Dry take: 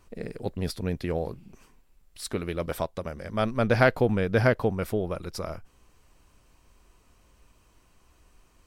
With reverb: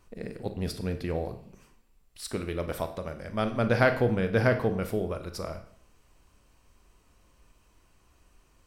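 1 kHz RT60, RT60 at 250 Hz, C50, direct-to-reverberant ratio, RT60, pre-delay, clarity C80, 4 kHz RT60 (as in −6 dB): 0.60 s, 0.55 s, 11.0 dB, 7.5 dB, 0.60 s, 27 ms, 14.0 dB, 0.55 s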